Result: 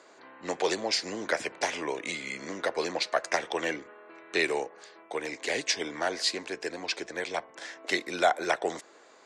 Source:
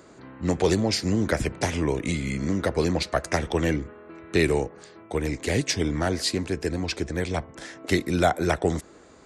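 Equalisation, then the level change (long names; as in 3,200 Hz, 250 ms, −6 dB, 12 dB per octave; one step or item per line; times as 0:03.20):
band-pass filter 580–6,800 Hz
notch filter 1,300 Hz, Q 16
0.0 dB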